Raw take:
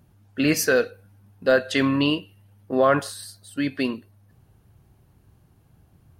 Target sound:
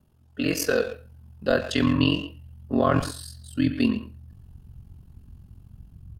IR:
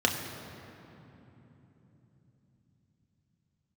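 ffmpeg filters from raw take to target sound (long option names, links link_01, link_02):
-filter_complex "[0:a]asplit=2[link_01][link_02];[link_02]adelay=120,highpass=300,lowpass=3400,asoftclip=type=hard:threshold=-16.5dB,volume=-10dB[link_03];[link_01][link_03]amix=inputs=2:normalize=0,acrossover=split=280[link_04][link_05];[link_05]dynaudnorm=framelen=180:gausssize=7:maxgain=3.5dB[link_06];[link_04][link_06]amix=inputs=2:normalize=0,aeval=exprs='val(0)*sin(2*PI*22*n/s)':channel_layout=same,asplit=2[link_07][link_08];[1:a]atrim=start_sample=2205,atrim=end_sample=4410,asetrate=38808,aresample=44100[link_09];[link_08][link_09]afir=irnorm=-1:irlink=0,volume=-20dB[link_10];[link_07][link_10]amix=inputs=2:normalize=0,asubboost=boost=11:cutoff=150,volume=-3.5dB"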